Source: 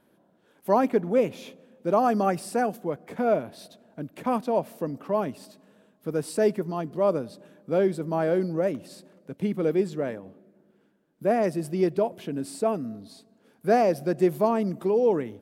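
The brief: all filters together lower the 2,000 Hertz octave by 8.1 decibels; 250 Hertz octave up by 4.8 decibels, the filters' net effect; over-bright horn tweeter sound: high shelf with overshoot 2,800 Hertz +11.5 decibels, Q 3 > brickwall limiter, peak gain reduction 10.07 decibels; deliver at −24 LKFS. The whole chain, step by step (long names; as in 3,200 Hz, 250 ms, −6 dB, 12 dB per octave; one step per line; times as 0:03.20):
parametric band 250 Hz +6.5 dB
parametric band 2,000 Hz −6 dB
high shelf with overshoot 2,800 Hz +11.5 dB, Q 3
level +4 dB
brickwall limiter −13 dBFS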